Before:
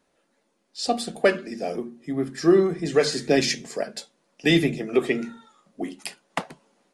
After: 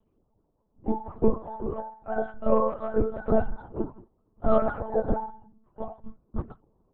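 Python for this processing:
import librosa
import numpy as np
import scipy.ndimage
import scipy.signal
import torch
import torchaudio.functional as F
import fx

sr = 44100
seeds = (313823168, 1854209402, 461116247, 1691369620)

y = fx.octave_mirror(x, sr, pivot_hz=450.0)
y = fx.lpc_monotone(y, sr, seeds[0], pitch_hz=220.0, order=8)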